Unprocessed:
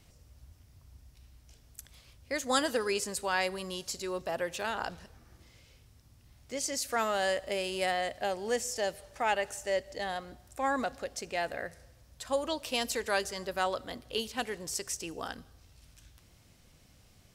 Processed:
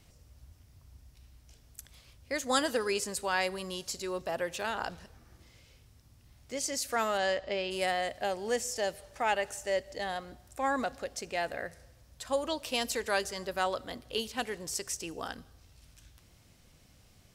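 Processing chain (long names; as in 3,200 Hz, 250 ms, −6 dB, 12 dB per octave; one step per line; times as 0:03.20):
0:07.17–0:07.70: low-pass filter 7,300 Hz → 4,400 Hz 24 dB per octave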